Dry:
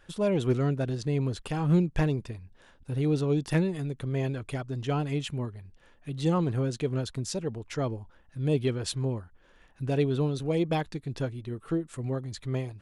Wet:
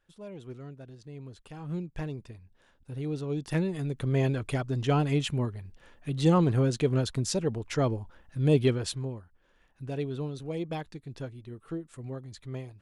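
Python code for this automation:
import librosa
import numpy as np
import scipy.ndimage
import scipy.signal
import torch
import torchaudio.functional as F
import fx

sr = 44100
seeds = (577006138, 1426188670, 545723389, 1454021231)

y = fx.gain(x, sr, db=fx.line((1.0, -17.0), (2.38, -7.0), (3.23, -7.0), (4.09, 3.5), (8.69, 3.5), (9.14, -7.0)))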